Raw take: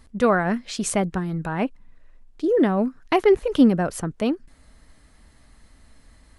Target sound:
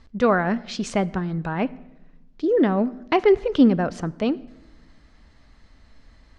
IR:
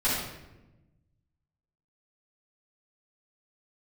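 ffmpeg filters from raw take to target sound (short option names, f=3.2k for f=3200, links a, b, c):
-filter_complex "[0:a]lowpass=f=5.9k:w=0.5412,lowpass=f=5.9k:w=1.3066,asplit=2[a][b];[1:a]atrim=start_sample=2205,adelay=25[c];[b][c]afir=irnorm=-1:irlink=0,volume=-31.5dB[d];[a][d]amix=inputs=2:normalize=0"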